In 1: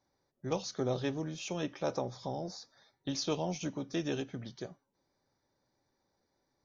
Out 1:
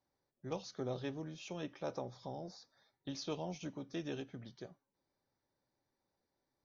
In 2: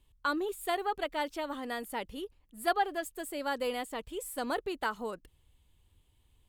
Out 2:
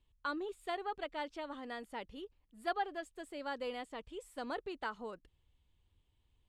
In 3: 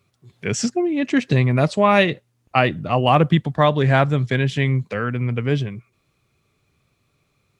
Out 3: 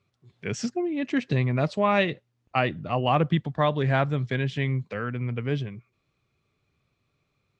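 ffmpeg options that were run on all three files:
-af "lowpass=5600,volume=-7dB"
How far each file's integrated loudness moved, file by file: −7.0, −7.0, −7.0 LU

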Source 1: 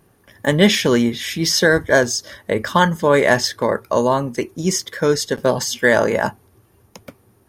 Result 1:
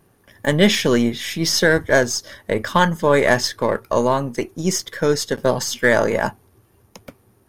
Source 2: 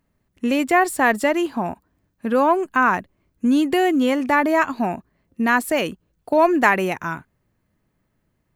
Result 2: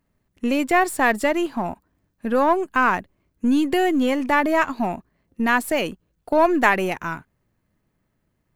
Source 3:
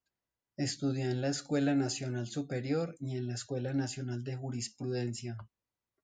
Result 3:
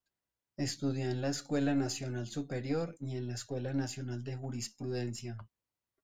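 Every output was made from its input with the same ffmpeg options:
-af "aeval=exprs='if(lt(val(0),0),0.708*val(0),val(0))':channel_layout=same"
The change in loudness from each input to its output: −1.0, −1.5, −1.5 LU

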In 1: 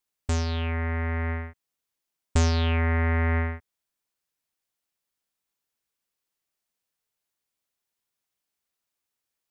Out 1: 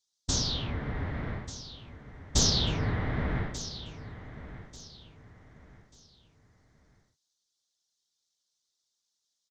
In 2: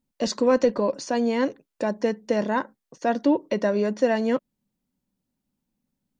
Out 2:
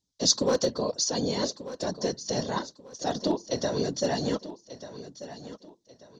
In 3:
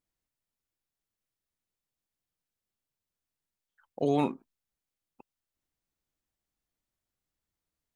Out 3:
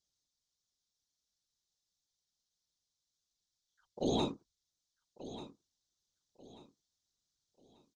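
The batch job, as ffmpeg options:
-filter_complex "[0:a]lowpass=frequency=6100:width_type=q:width=2.9,afftfilt=real='hypot(re,im)*cos(2*PI*random(0))':imag='hypot(re,im)*sin(2*PI*random(1))':win_size=512:overlap=0.75,asoftclip=type=hard:threshold=-17dB,highshelf=frequency=3000:width_type=q:width=3:gain=6.5,asplit=2[link_01][link_02];[link_02]aecho=0:1:1189|2378|3567:0.2|0.0619|0.0192[link_03];[link_01][link_03]amix=inputs=2:normalize=0"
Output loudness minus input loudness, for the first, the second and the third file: −4.0, −4.0, −8.0 LU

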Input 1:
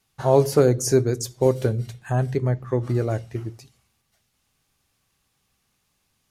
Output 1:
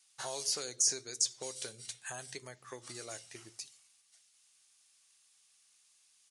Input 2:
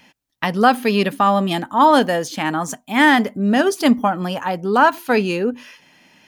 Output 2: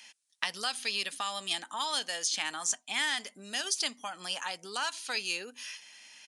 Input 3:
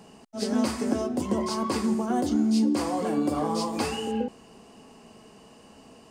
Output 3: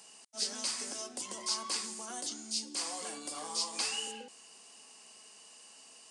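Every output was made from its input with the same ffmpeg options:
-filter_complex "[0:a]acrossover=split=3000|6800[link_01][link_02][link_03];[link_01]acompressor=threshold=-27dB:ratio=4[link_04];[link_02]acompressor=threshold=-34dB:ratio=4[link_05];[link_03]acompressor=threshold=-52dB:ratio=4[link_06];[link_04][link_05][link_06]amix=inputs=3:normalize=0,aresample=22050,aresample=44100,aderivative,volume=8dB"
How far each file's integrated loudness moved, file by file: −13.5, −15.0, −9.0 LU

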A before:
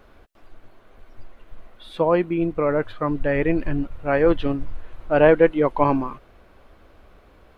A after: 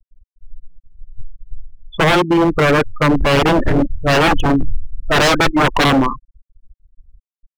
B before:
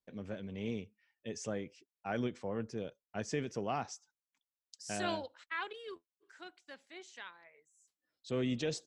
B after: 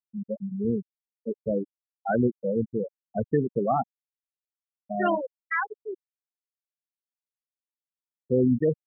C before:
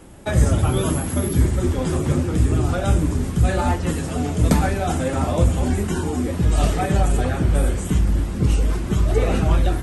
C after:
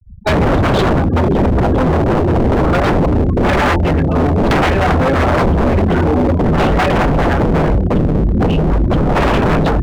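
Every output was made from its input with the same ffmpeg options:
-af "lowpass=frequency=4300:width=0.5412,lowpass=frequency=4300:width=1.3066,afftfilt=real='re*gte(hypot(re,im),0.0501)':imag='im*gte(hypot(re,im),0.0501)':win_size=1024:overlap=0.75,apsyclip=9.5dB,aeval=exprs='0.282*(abs(mod(val(0)/0.282+3,4)-2)-1)':channel_layout=same,volume=3.5dB"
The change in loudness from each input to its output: +6.5, +12.0, +7.0 LU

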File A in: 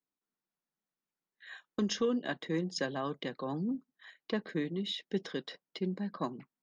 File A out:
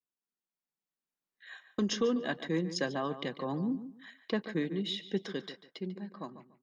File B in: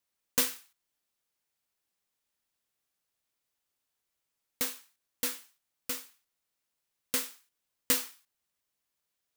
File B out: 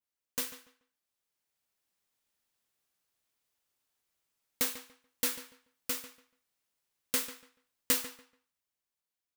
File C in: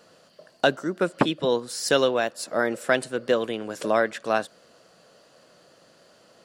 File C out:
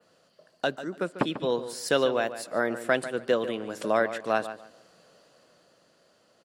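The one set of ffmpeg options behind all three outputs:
-filter_complex "[0:a]adynamicequalizer=threshold=0.00398:dfrequency=6000:dqfactor=0.94:tfrequency=6000:tqfactor=0.94:attack=5:release=100:ratio=0.375:range=2.5:mode=cutabove:tftype=bell,dynaudnorm=framelen=150:gausssize=17:maxgain=9.5dB,asplit=2[link_01][link_02];[link_02]adelay=144,lowpass=frequency=3400:poles=1,volume=-12dB,asplit=2[link_03][link_04];[link_04]adelay=144,lowpass=frequency=3400:poles=1,volume=0.23,asplit=2[link_05][link_06];[link_06]adelay=144,lowpass=frequency=3400:poles=1,volume=0.23[link_07];[link_01][link_03][link_05][link_07]amix=inputs=4:normalize=0,volume=-8dB"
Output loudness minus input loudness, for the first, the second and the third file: +1.5, −2.0, −3.5 LU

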